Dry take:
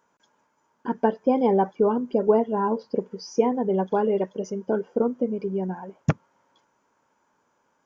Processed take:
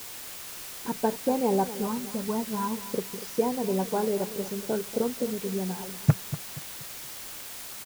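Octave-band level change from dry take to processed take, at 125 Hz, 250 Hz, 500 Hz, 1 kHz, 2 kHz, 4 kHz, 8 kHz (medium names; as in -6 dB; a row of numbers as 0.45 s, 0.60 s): +1.5 dB, -4.0 dB, -6.5 dB, -5.0 dB, 0.0 dB, +8.5 dB, no reading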